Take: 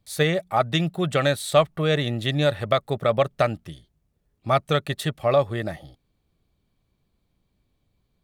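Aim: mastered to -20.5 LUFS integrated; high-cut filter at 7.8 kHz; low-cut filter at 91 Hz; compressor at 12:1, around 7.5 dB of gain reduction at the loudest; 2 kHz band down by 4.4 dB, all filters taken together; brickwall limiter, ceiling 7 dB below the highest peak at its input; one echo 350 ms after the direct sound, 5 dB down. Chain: high-pass 91 Hz; low-pass 7.8 kHz; peaking EQ 2 kHz -5.5 dB; compression 12:1, threshold -21 dBFS; peak limiter -16.5 dBFS; delay 350 ms -5 dB; trim +8.5 dB

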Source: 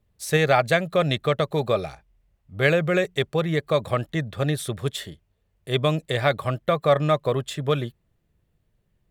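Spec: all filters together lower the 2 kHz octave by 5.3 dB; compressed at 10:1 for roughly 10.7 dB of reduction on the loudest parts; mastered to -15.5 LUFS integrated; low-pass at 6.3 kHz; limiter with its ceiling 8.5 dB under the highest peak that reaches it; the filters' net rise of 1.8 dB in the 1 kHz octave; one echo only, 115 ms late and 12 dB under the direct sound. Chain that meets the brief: low-pass 6.3 kHz; peaking EQ 1 kHz +5 dB; peaking EQ 2 kHz -8.5 dB; compression 10:1, threshold -24 dBFS; peak limiter -22 dBFS; delay 115 ms -12 dB; trim +17.5 dB

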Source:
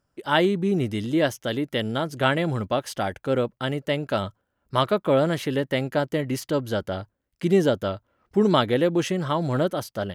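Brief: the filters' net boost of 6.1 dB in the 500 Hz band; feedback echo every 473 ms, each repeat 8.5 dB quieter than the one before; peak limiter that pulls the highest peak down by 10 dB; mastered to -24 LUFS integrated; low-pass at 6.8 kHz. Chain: low-pass 6.8 kHz; peaking EQ 500 Hz +7.5 dB; peak limiter -12 dBFS; feedback delay 473 ms, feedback 38%, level -8.5 dB; trim -1.5 dB

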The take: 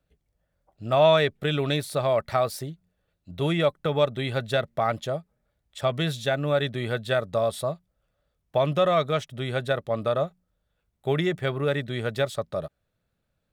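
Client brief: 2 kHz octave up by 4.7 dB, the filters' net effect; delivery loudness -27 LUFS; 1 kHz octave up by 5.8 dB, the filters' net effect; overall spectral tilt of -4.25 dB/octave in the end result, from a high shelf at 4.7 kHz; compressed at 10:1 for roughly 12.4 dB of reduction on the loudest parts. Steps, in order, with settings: peaking EQ 1 kHz +7 dB; peaking EQ 2 kHz +4.5 dB; treble shelf 4.7 kHz -6 dB; compression 10:1, threshold -23 dBFS; trim +2.5 dB

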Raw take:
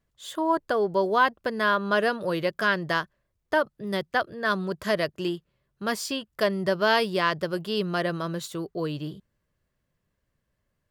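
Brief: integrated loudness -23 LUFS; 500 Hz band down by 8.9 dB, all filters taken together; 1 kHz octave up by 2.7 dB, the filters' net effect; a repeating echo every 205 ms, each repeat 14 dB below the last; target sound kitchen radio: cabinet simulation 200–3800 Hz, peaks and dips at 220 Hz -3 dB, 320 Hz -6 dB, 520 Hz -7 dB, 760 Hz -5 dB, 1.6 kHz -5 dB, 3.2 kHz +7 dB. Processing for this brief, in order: cabinet simulation 200–3800 Hz, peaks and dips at 220 Hz -3 dB, 320 Hz -6 dB, 520 Hz -7 dB, 760 Hz -5 dB, 1.6 kHz -5 dB, 3.2 kHz +7 dB; peaking EQ 500 Hz -8.5 dB; peaking EQ 1 kHz +7 dB; feedback delay 205 ms, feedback 20%, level -14 dB; trim +4 dB

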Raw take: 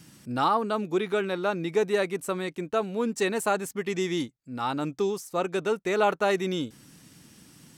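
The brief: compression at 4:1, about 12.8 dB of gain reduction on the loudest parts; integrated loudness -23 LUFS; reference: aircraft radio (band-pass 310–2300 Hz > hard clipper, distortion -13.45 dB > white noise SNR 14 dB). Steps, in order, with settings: compression 4:1, threshold -35 dBFS; band-pass 310–2300 Hz; hard clipper -33 dBFS; white noise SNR 14 dB; trim +17.5 dB

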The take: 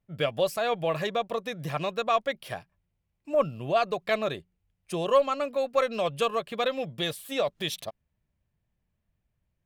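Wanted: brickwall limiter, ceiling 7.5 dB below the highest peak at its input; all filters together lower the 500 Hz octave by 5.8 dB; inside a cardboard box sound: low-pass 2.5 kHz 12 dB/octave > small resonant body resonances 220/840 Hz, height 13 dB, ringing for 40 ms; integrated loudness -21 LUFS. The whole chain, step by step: peaking EQ 500 Hz -7 dB; peak limiter -21 dBFS; low-pass 2.5 kHz 12 dB/octave; small resonant body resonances 220/840 Hz, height 13 dB, ringing for 40 ms; trim +10 dB

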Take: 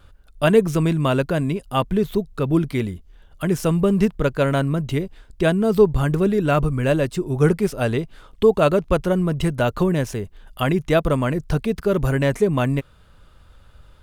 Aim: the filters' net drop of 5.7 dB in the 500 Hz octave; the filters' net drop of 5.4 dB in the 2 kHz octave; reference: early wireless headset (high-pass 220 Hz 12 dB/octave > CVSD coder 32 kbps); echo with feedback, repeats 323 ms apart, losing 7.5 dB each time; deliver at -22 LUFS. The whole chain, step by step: high-pass 220 Hz 12 dB/octave; peaking EQ 500 Hz -6.5 dB; peaking EQ 2 kHz -7.5 dB; feedback delay 323 ms, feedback 42%, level -7.5 dB; CVSD coder 32 kbps; trim +4 dB

